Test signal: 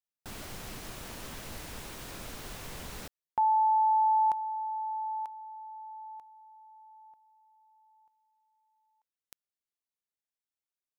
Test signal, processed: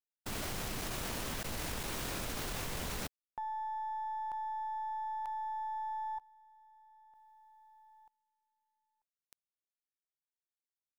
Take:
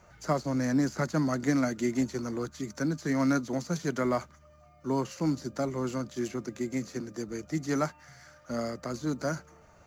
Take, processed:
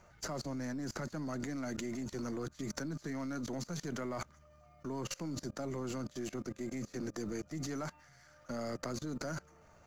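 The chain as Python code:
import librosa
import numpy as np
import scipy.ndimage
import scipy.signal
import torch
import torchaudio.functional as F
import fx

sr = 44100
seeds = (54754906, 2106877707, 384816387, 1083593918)

y = np.where(x < 0.0, 10.0 ** (-3.0 / 20.0) * x, x)
y = fx.level_steps(y, sr, step_db=23)
y = y * 10.0 ** (7.5 / 20.0)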